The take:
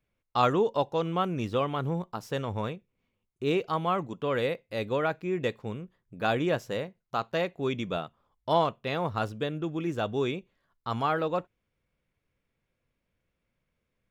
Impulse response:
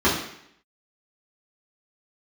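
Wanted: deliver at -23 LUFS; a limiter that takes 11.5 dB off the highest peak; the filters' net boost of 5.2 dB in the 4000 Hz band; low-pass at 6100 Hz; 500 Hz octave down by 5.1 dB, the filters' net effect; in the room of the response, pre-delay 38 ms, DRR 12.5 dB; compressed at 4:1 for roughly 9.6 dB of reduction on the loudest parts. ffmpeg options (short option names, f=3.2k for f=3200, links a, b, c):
-filter_complex "[0:a]lowpass=6.1k,equalizer=f=500:t=o:g=-6.5,equalizer=f=4k:t=o:g=7,acompressor=threshold=-31dB:ratio=4,alimiter=level_in=4.5dB:limit=-24dB:level=0:latency=1,volume=-4.5dB,asplit=2[a][b];[1:a]atrim=start_sample=2205,adelay=38[c];[b][c]afir=irnorm=-1:irlink=0,volume=-31.5dB[d];[a][d]amix=inputs=2:normalize=0,volume=16.5dB"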